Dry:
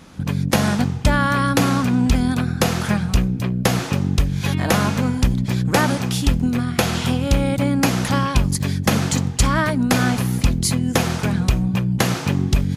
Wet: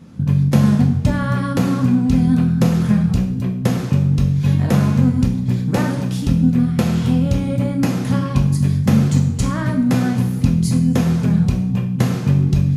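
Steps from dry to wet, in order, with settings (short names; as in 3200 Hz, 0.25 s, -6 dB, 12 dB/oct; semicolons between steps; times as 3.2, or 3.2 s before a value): bell 160 Hz +14.5 dB 2.9 oct; two-slope reverb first 0.56 s, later 1.8 s, DRR 2 dB; gain -10.5 dB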